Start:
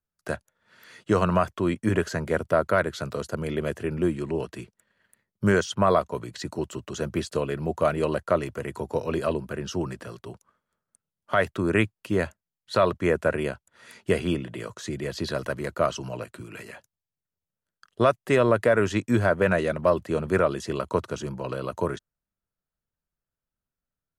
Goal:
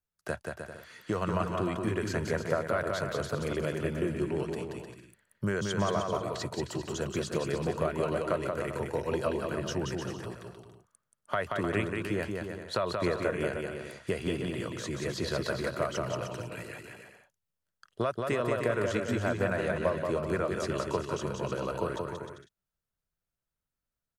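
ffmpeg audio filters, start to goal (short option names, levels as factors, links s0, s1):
-af "acompressor=threshold=0.0631:ratio=5,equalizer=f=250:w=1.7:g=-3,aecho=1:1:180|306|394.2|455.9|499.2:0.631|0.398|0.251|0.158|0.1,volume=0.75"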